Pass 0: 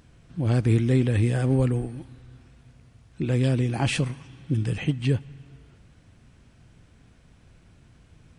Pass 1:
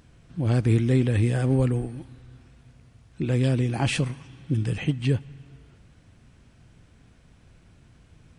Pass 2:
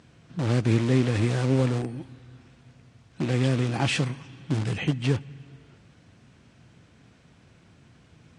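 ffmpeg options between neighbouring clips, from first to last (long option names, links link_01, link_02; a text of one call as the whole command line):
ffmpeg -i in.wav -af anull out.wav
ffmpeg -i in.wav -filter_complex "[0:a]asplit=2[link_01][link_02];[link_02]aeval=exprs='(mod(13.3*val(0)+1,2)-1)/13.3':channel_layout=same,volume=-10.5dB[link_03];[link_01][link_03]amix=inputs=2:normalize=0,highpass=110,lowpass=7300" -ar 22050 -c:a libvorbis -b:a 48k out.ogg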